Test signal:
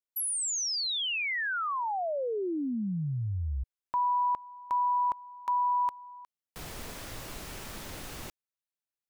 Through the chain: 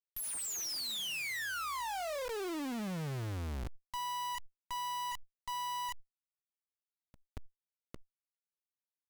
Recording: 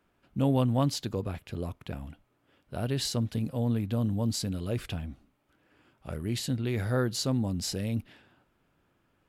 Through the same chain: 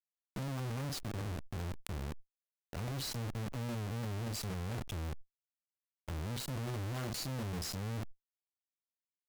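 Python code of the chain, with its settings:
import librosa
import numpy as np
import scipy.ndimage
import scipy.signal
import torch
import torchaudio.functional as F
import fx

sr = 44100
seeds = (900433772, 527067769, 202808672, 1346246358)

y = fx.bin_expand(x, sr, power=1.5)
y = fx.low_shelf(y, sr, hz=130.0, db=12.0)
y = fx.notch(y, sr, hz=480.0, q=12.0)
y = fx.spec_gate(y, sr, threshold_db=-20, keep='strong')
y = fx.doubler(y, sr, ms=38.0, db=-11.5)
y = 10.0 ** (-23.0 / 20.0) * np.tanh(y / 10.0 ** (-23.0 / 20.0))
y = scipy.signal.sosfilt(scipy.signal.butter(2, 42.0, 'highpass', fs=sr, output='sos'), y)
y = fx.high_shelf(y, sr, hz=10000.0, db=-6.0)
y = fx.quant_companded(y, sr, bits=2)
y = fx.clip_asym(y, sr, top_db=-42.0, bottom_db=-25.0)
y = fx.sustainer(y, sr, db_per_s=49.0)
y = y * 10.0 ** (-7.5 / 20.0)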